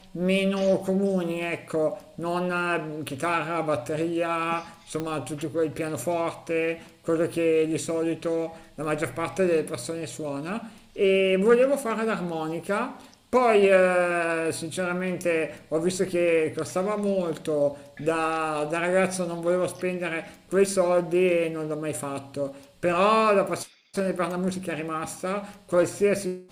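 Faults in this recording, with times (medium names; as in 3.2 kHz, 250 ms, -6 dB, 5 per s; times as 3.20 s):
5.00 s: pop -17 dBFS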